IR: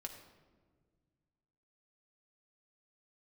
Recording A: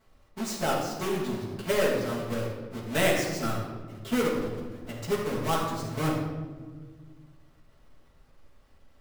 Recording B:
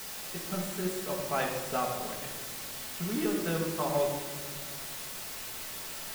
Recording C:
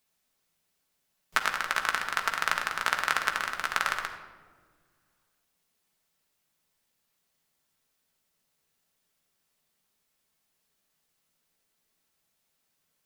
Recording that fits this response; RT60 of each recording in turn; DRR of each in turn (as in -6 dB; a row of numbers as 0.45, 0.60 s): C; 1.6 s, 1.6 s, not exponential; -8.5, -2.5, 2.5 dB